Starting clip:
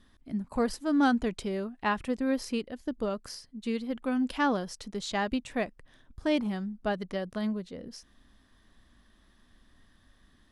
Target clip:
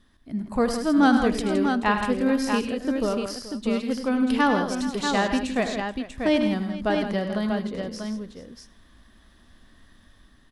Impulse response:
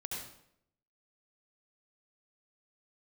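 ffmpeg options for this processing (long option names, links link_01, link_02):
-filter_complex "[0:a]dynaudnorm=framelen=110:gausssize=7:maxgain=5dB,aecho=1:1:78|101|164|429|640:0.266|0.316|0.335|0.15|0.501,asplit=2[link_01][link_02];[1:a]atrim=start_sample=2205[link_03];[link_02][link_03]afir=irnorm=-1:irlink=0,volume=-20.5dB[link_04];[link_01][link_04]amix=inputs=2:normalize=0"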